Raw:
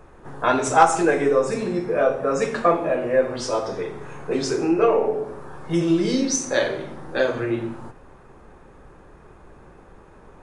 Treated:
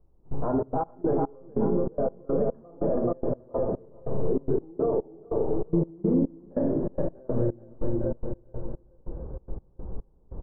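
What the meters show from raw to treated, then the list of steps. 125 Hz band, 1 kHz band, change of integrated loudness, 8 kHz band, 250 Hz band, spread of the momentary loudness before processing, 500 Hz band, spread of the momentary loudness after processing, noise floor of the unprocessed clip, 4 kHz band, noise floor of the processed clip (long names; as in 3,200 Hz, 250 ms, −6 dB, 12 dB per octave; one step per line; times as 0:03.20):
+1.0 dB, −13.5 dB, −7.0 dB, below −40 dB, −3.5 dB, 12 LU, −6.5 dB, 16 LU, −48 dBFS, below −40 dB, −58 dBFS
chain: echo machine with several playback heads 284 ms, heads first and third, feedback 49%, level −18 dB
in parallel at 0 dB: downward compressor, threshold −28 dBFS, peak gain reduction 18.5 dB
on the sum: low-pass filter 1,000 Hz 24 dB per octave
low-shelf EQ 81 Hz +10 dB
repeating echo 427 ms, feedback 42%, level −5 dB
brickwall limiter −12 dBFS, peak gain reduction 9.5 dB
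tilt shelving filter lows +7 dB, about 650 Hz
gate pattern "...xxx.x..xx" 144 BPM −24 dB
level −7 dB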